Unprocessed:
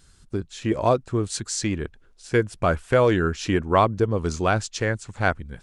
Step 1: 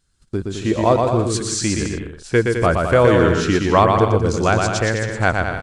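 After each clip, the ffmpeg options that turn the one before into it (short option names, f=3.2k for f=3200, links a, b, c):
-af "aecho=1:1:120|210|277.5|328.1|366.1:0.631|0.398|0.251|0.158|0.1,agate=range=-16dB:threshold=-48dB:ratio=16:detection=peak,volume=4dB"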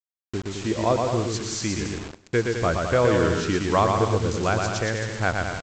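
-af "aresample=16000,acrusher=bits=4:mix=0:aa=0.000001,aresample=44100,aecho=1:1:100|200|300|400:0.1|0.051|0.026|0.0133,volume=-6.5dB"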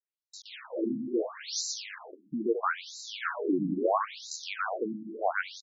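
-af "afftfilt=real='re*between(b*sr/1024,220*pow(5400/220,0.5+0.5*sin(2*PI*0.75*pts/sr))/1.41,220*pow(5400/220,0.5+0.5*sin(2*PI*0.75*pts/sr))*1.41)':imag='im*between(b*sr/1024,220*pow(5400/220,0.5+0.5*sin(2*PI*0.75*pts/sr))/1.41,220*pow(5400/220,0.5+0.5*sin(2*PI*0.75*pts/sr))*1.41)':win_size=1024:overlap=0.75"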